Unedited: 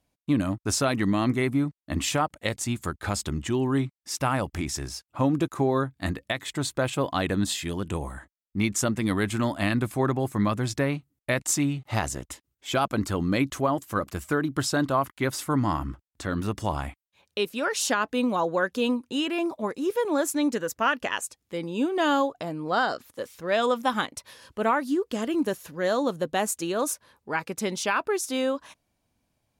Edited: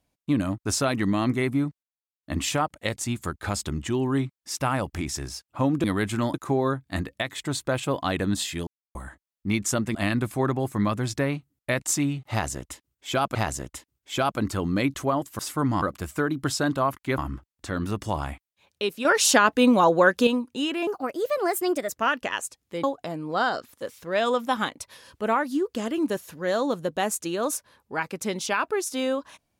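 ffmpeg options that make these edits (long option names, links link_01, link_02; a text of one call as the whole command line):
ffmpeg -i in.wav -filter_complex "[0:a]asplit=16[link_01][link_02][link_03][link_04][link_05][link_06][link_07][link_08][link_09][link_10][link_11][link_12][link_13][link_14][link_15][link_16];[link_01]atrim=end=1.83,asetpts=PTS-STARTPTS,afade=type=out:start_time=1.826:duration=0.004:curve=hsin,apad=pad_dur=0.4[link_17];[link_02]atrim=start=1.83:end=5.442,asetpts=PTS-STARTPTS,afade=type=in:duration=0.004:curve=hsin[link_18];[link_03]atrim=start=9.048:end=9.552[link_19];[link_04]atrim=start=5.438:end=7.77,asetpts=PTS-STARTPTS,afade=type=out:start_time=2.328:duration=0.004:curve=hsin[link_20];[link_05]atrim=start=7.77:end=8.05,asetpts=PTS-STARTPTS,volume=0[link_21];[link_06]atrim=start=8.05:end=9.052,asetpts=PTS-STARTPTS,afade=type=in:duration=0.004:curve=hsin[link_22];[link_07]atrim=start=9.548:end=12.952[link_23];[link_08]atrim=start=11.908:end=13.952[link_24];[link_09]atrim=start=15.308:end=15.742[link_25];[link_10]atrim=start=13.948:end=15.312[link_26];[link_11]atrim=start=15.738:end=17.612[link_27];[link_12]atrim=start=17.608:end=18.832,asetpts=PTS-STARTPTS,volume=7dB[link_28];[link_13]atrim=start=18.828:end=19.434[link_29];[link_14]atrim=start=19.43:end=20.69,asetpts=PTS-STARTPTS,asetrate=54243,aresample=44100[link_30];[link_15]atrim=start=20.686:end=21.632[link_31];[link_16]atrim=start=22.198[link_32];[link_17][link_18]concat=n=2:v=0:a=1[link_33];[link_33][link_19]acrossfade=duration=0.004:curve1=hsin:curve2=hsin[link_34];[link_20][link_21][link_22]concat=n=3:v=0:a=1[link_35];[link_34][link_35]acrossfade=duration=0.004:curve1=hsin:curve2=hsin[link_36];[link_36][link_23]acrossfade=duration=0.004:curve1=hsin:curve2=hsin[link_37];[link_37][link_24]acrossfade=duration=0.004:curve1=hsin:curve2=hsin[link_38];[link_38][link_25]acrossfade=duration=0.004:curve1=hsin:curve2=hsin[link_39];[link_39][link_26]acrossfade=duration=0.004:curve1=hsin:curve2=hsin[link_40];[link_40][link_27]acrossfade=duration=0.004:curve1=hsin:curve2=hsin[link_41];[link_41][link_28]acrossfade=duration=0.004:curve1=hsin:curve2=hsin[link_42];[link_42][link_29]acrossfade=duration=0.004:curve1=hsin:curve2=hsin[link_43];[link_43][link_30]acrossfade=duration=0.004:curve1=hsin:curve2=hsin[link_44];[link_44][link_31]acrossfade=duration=0.004:curve1=hsin:curve2=hsin[link_45];[link_45][link_32]acrossfade=duration=0.004:curve1=hsin:curve2=hsin" out.wav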